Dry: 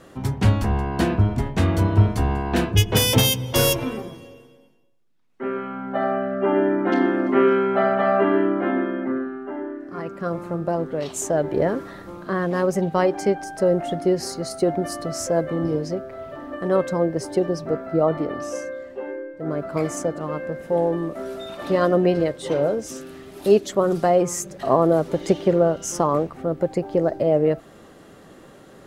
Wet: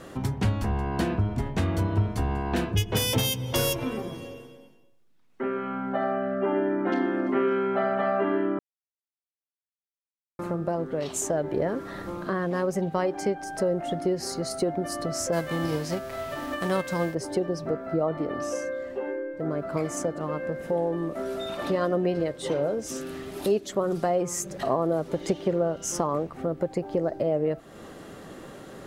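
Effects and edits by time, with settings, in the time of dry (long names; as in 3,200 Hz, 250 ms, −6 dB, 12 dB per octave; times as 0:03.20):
0:08.59–0:10.39: silence
0:15.32–0:17.13: spectral envelope flattened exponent 0.6
whole clip: downward compressor 2 to 1, threshold −34 dBFS; level +3.5 dB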